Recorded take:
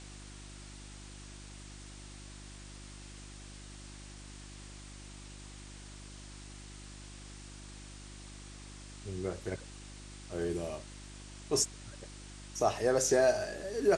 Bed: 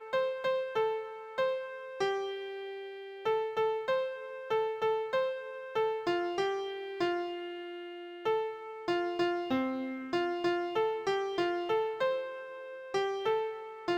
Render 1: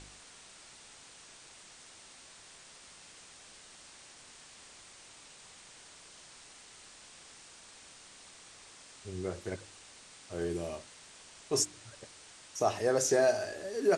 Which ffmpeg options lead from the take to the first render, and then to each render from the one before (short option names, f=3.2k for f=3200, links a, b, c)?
-af "bandreject=f=50:t=h:w=4,bandreject=f=100:t=h:w=4,bandreject=f=150:t=h:w=4,bandreject=f=200:t=h:w=4,bandreject=f=250:t=h:w=4,bandreject=f=300:t=h:w=4,bandreject=f=350:t=h:w=4"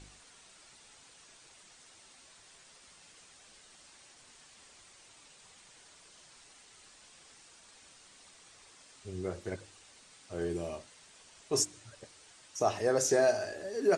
-af "afftdn=nr=6:nf=-55"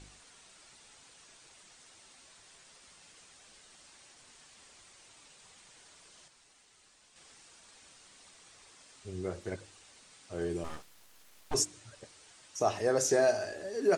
-filter_complex "[0:a]asplit=3[a][b][c];[a]afade=t=out:st=10.63:d=0.02[d];[b]aeval=exprs='abs(val(0))':c=same,afade=t=in:st=10.63:d=0.02,afade=t=out:st=11.53:d=0.02[e];[c]afade=t=in:st=11.53:d=0.02[f];[d][e][f]amix=inputs=3:normalize=0,asplit=3[g][h][i];[g]atrim=end=6.282[j];[h]atrim=start=6.278:end=7.162,asetpts=PTS-STARTPTS,volume=-6dB[k];[i]atrim=start=7.158[l];[j][k]acrossfade=d=0.004:c1=hsin:c2=hsin[m];[m][l]acrossfade=d=0.004:c1=hsin:c2=hsin"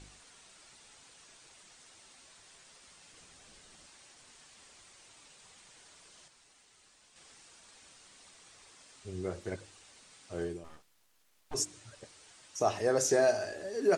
-filter_complex "[0:a]asettb=1/sr,asplit=3[a][b][c];[a]atrim=end=3.134[d];[b]atrim=start=3.13:end=3.86,asetpts=PTS-STARTPTS,afade=t=in:d=0.004:c=qsin,afade=t=out:st=0.726:d=0.004:c=qsin,lowshelf=f=350:g=7.5[e];[c]atrim=start=3.856[f];[d][e]acrossfade=d=0.004:c1=hsin:c2=qsin[g];[g][f]acrossfade=d=0.004:c1=qsin:c2=hsin,asplit=3[h][i][j];[h]atrim=end=10.61,asetpts=PTS-STARTPTS,afade=t=out:st=10.39:d=0.22:silence=0.281838[k];[i]atrim=start=10.61:end=11.48,asetpts=PTS-STARTPTS,volume=-11dB[l];[j]atrim=start=11.48,asetpts=PTS-STARTPTS,afade=t=in:d=0.22:silence=0.281838[m];[k][l][m]concat=n=3:v=0:a=1"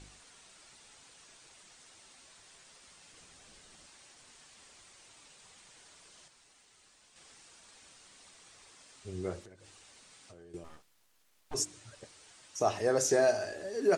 -filter_complex "[0:a]asettb=1/sr,asplit=3[a][b][c];[a]atrim=end=9.434[d];[b]atrim=start=9.43:end=10.54,asetpts=PTS-STARTPTS,afade=t=in:d=0.004:c=qsin,afade=t=out:st=1.106:d=0.004:c=qsin,acompressor=threshold=-50dB:ratio=16:attack=3.2:release=140:knee=1:detection=peak[e];[c]atrim=start=10.536[f];[d][e]acrossfade=d=0.004:c1=hsin:c2=qsin[g];[g][f]acrossfade=d=0.004:c1=qsin:c2=hsin"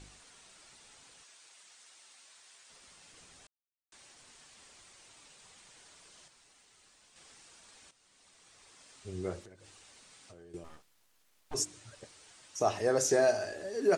-filter_complex "[0:a]asettb=1/sr,asplit=3[a][b][c];[a]atrim=end=1.234[d];[b]atrim=start=1.23:end=2.7,asetpts=PTS-STARTPTS,afade=t=in:d=0.004:c=qsin,afade=t=out:st=1.466:d=0.004:c=qsin,highpass=f=1k:p=1[e];[c]atrim=start=2.696[f];[d][e]acrossfade=d=0.004:c1=hsin:c2=qsin[g];[g][f]acrossfade=d=0.004:c1=qsin:c2=hsin,asplit=4[h][i][j][k];[h]atrim=end=3.47,asetpts=PTS-STARTPTS,afade=t=out:st=3.466:d=0.004:c=hsin[l];[i]atrim=start=3.47:end=3.92,asetpts=PTS-STARTPTS,volume=0[m];[j]atrim=start=3.92:end=7.91,asetpts=PTS-STARTPTS,afade=t=in:d=0.004:c=hsin,afade=t=out:st=3.986:d=0.004:c=hsin:silence=0.211349[n];[k]atrim=start=7.91,asetpts=PTS-STARTPTS,afade=t=in:d=0.99:silence=0.211349[o];[l][m][n][o]concat=n=4:v=0:a=1"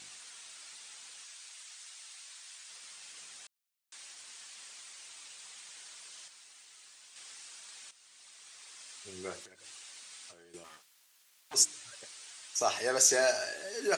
-af "highpass=140,tiltshelf=f=860:g=-9"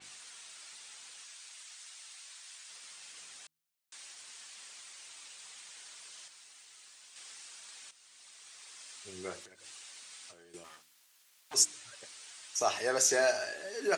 -af "bandreject=f=78.52:t=h:w=4,bandreject=f=157.04:t=h:w=4,bandreject=f=235.56:t=h:w=4,bandreject=f=314.08:t=h:w=4,adynamicequalizer=threshold=0.00316:dfrequency=3700:dqfactor=0.7:tfrequency=3700:tqfactor=0.7:attack=5:release=100:ratio=0.375:range=2.5:mode=cutabove:tftype=highshelf"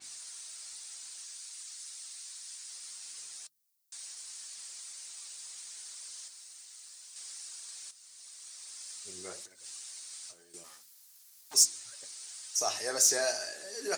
-af "flanger=delay=3.1:depth=6.4:regen=71:speed=2:shape=sinusoidal,aexciter=amount=1.5:drive=9.8:freq=4.2k"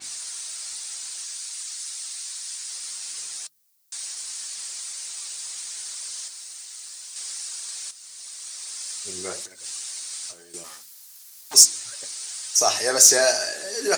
-af "volume=11.5dB,alimiter=limit=-1dB:level=0:latency=1"